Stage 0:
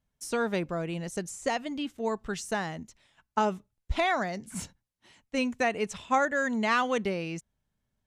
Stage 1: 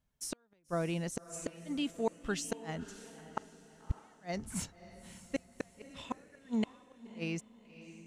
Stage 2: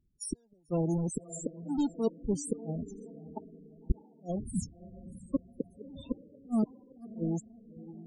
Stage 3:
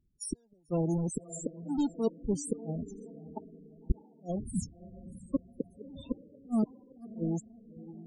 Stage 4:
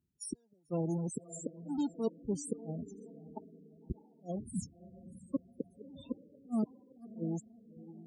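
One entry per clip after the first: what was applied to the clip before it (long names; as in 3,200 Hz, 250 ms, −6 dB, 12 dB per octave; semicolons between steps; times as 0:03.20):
gate with flip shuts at −20 dBFS, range −42 dB; feedback delay with all-pass diffusion 587 ms, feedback 41%, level −14 dB; level −1 dB
each half-wave held at its own peak; drawn EQ curve 380 Hz 0 dB, 1,800 Hz −12 dB, 4,600 Hz +1 dB, 9,000 Hz +7 dB; spectral peaks only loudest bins 16; level +1.5 dB
no processing that can be heard
high-pass filter 95 Hz 12 dB per octave; level −4 dB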